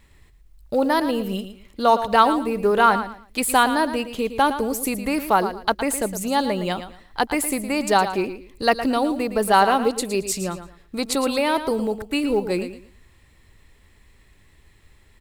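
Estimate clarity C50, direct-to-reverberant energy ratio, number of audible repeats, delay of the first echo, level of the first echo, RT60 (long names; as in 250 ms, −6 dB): no reverb audible, no reverb audible, 2, 113 ms, −11.0 dB, no reverb audible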